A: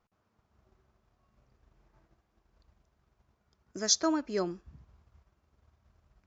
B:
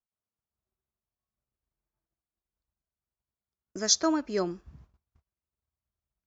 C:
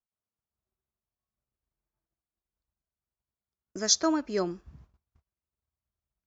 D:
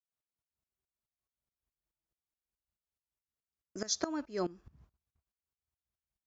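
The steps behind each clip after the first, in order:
noise gate −57 dBFS, range −27 dB; level +2.5 dB
no processing that can be heard
tremolo with a ramp in dB swelling 4.7 Hz, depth 19 dB

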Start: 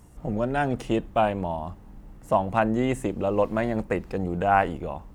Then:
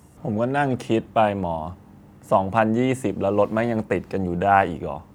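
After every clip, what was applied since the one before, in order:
high-pass filter 77 Hz 24 dB per octave
level +3.5 dB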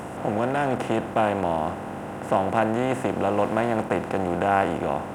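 compressor on every frequency bin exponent 0.4
level −7.5 dB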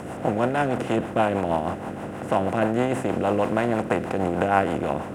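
rotating-speaker cabinet horn 6.3 Hz
level +3 dB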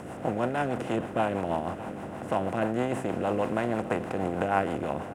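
single-tap delay 602 ms −15.5 dB
level −5.5 dB

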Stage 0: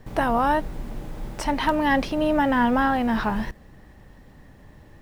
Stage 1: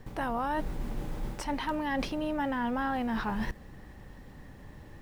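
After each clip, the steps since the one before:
notch filter 640 Hz, Q 13
reversed playback
downward compressor, threshold −29 dBFS, peak gain reduction 12 dB
reversed playback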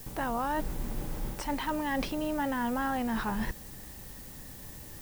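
background noise blue −49 dBFS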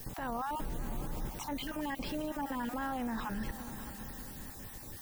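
time-frequency cells dropped at random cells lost 26%
echo machine with several playback heads 202 ms, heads all three, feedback 55%, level −21 dB
brickwall limiter −29 dBFS, peak gain reduction 9.5 dB

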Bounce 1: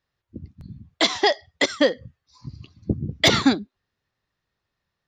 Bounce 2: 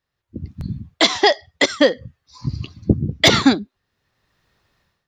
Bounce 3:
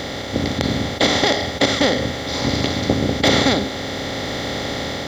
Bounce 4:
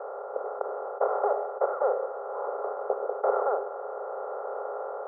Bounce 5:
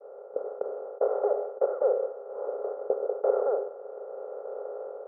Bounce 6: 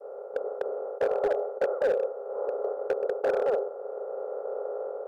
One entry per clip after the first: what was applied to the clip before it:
automatic gain control gain up to 16.5 dB; level −1 dB
compressor on every frequency bin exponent 0.2; level −9.5 dB
Chebyshev band-pass filter 410–1,400 Hz, order 5; level −4.5 dB
downward expander −30 dBFS; octave-band graphic EQ 250/500/1,000 Hz +11/+10/−6 dB; level −8 dB
in parallel at −2.5 dB: downward compressor 16 to 1, threshold −36 dBFS, peak gain reduction 19 dB; on the sum: gain into a clipping stage and back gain 20 dB

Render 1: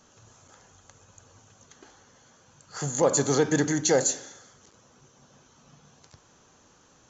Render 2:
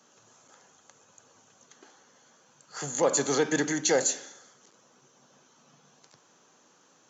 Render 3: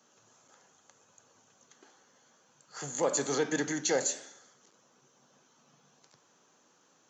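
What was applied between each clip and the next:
Bessel high-pass filter 220 Hz, order 8; dynamic equaliser 2,500 Hz, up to +5 dB, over −44 dBFS, Q 1.1; level −2 dB
flanger 0.89 Hz, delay 7.8 ms, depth 7.7 ms, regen −85%

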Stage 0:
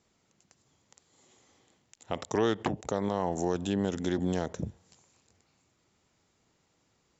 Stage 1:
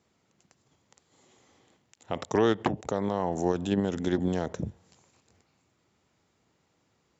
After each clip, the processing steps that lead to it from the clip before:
high-pass filter 58 Hz
high-shelf EQ 4,700 Hz −7 dB
in parallel at −3 dB: output level in coarse steps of 14 dB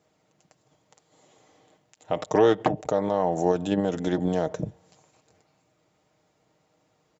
parametric band 630 Hz +8 dB 0.82 octaves
comb filter 6.5 ms, depth 48%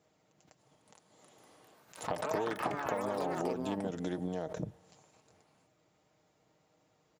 downward compressor 8 to 1, threshold −29 dBFS, peak gain reduction 15 dB
delay with pitch and tempo change per echo 591 ms, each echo +6 semitones, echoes 3
background raised ahead of every attack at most 140 dB per second
level −3.5 dB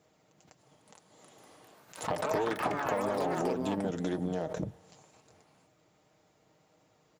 flanger 1.9 Hz, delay 0.4 ms, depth 7.5 ms, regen −77%
in parallel at −11.5 dB: wave folding −35.5 dBFS
on the sum: level +6.5 dB

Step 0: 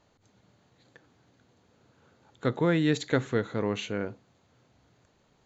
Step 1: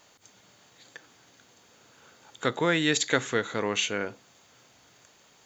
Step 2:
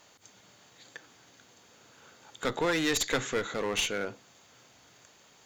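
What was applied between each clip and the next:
spectral tilt +3.5 dB per octave; notch filter 4,100 Hz, Q 11; in parallel at −2 dB: downward compressor, threshold −39 dBFS, peak gain reduction 16 dB; on the sum: level +2.5 dB
asymmetric clip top −28.5 dBFS

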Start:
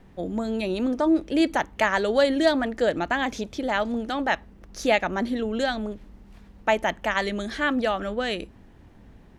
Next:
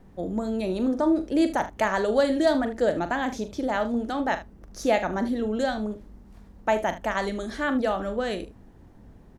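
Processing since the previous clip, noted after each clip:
parametric band 2,700 Hz −8 dB 1.6 octaves
on a send: ambience of single reflections 42 ms −11 dB, 76 ms −15.5 dB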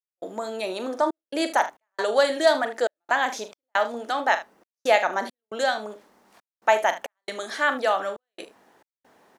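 high-pass filter 690 Hz 12 dB per octave
gate pattern ".xxxx.xx" 68 BPM −60 dB
level +7 dB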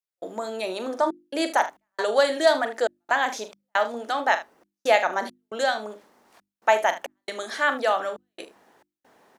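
mains-hum notches 50/100/150/200/250/300/350 Hz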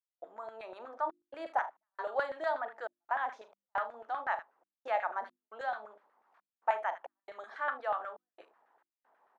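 bass and treble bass −1 dB, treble −4 dB
auto-filter band-pass saw down 8.2 Hz 720–1,500 Hz
level −6 dB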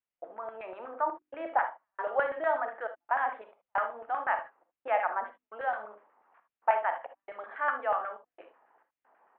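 Butterworth low-pass 2,900 Hz 48 dB per octave
reverb whose tail is shaped and stops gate 90 ms rising, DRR 9 dB
level +4 dB

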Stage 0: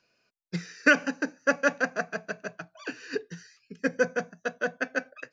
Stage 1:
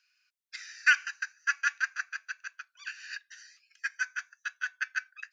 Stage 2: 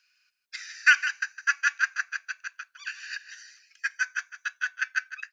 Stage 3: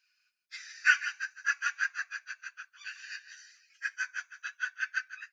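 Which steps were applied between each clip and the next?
Butterworth high-pass 1,400 Hz 36 dB per octave
single-tap delay 158 ms −12 dB; level +4 dB
random phases in long frames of 50 ms; level −5.5 dB

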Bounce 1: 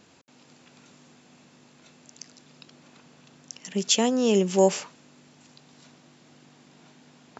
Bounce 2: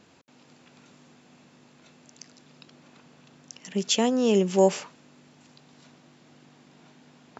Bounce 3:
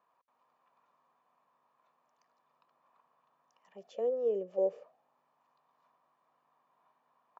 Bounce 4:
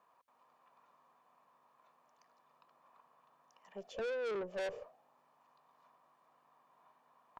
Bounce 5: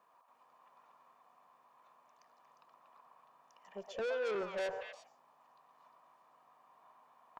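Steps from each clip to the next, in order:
high-shelf EQ 5,400 Hz −6.5 dB
comb filter 1.7 ms, depth 42%; envelope filter 480–1,000 Hz, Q 6.5, down, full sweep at −18.5 dBFS; level −3 dB
tube saturation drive 41 dB, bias 0.3; level +5 dB
low-shelf EQ 93 Hz −7.5 dB; echo through a band-pass that steps 118 ms, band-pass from 920 Hz, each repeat 1.4 octaves, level 0 dB; level +1.5 dB

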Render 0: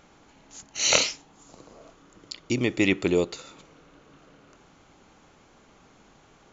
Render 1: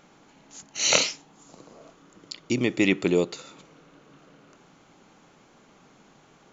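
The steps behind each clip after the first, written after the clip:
low shelf with overshoot 110 Hz −8 dB, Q 1.5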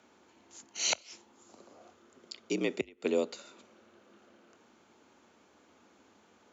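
gate with flip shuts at −8 dBFS, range −28 dB
frequency shifter +63 Hz
level −7 dB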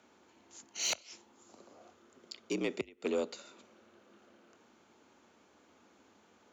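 soft clipping −22.5 dBFS, distortion −16 dB
level −1.5 dB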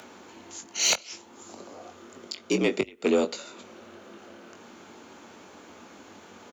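in parallel at −2.5 dB: upward compression, threshold −44 dBFS
on the sum: double-tracking delay 21 ms −7.5 dB
level +5 dB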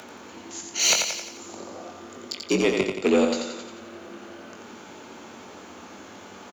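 in parallel at −5 dB: soft clipping −24.5 dBFS, distortion −9 dB
on the sum: repeating echo 88 ms, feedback 52%, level −5 dB

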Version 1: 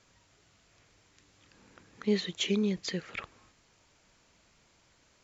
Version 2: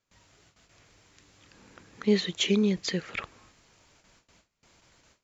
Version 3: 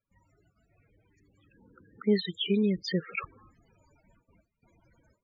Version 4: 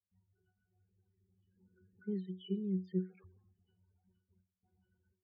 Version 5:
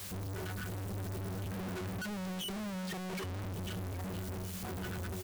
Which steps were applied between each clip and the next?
noise gate with hold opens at −55 dBFS; level +4.5 dB
spectral peaks only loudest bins 16; speech leveller within 3 dB 0.5 s
resonances in every octave F#, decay 0.25 s
sign of each sample alone; single-tap delay 770 ms −14.5 dB; level +5.5 dB

